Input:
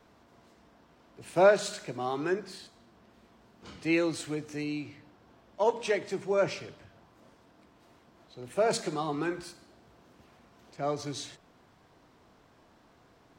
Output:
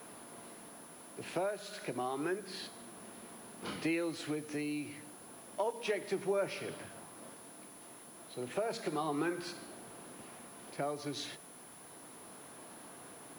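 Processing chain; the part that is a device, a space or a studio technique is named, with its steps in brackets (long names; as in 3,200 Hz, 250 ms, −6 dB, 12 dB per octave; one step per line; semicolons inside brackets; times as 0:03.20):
medium wave at night (band-pass filter 170–4,400 Hz; downward compressor 6 to 1, threshold −40 dBFS, peak gain reduction 22 dB; amplitude tremolo 0.31 Hz, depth 36%; steady tone 10,000 Hz −63 dBFS; white noise bed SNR 21 dB)
level +8.5 dB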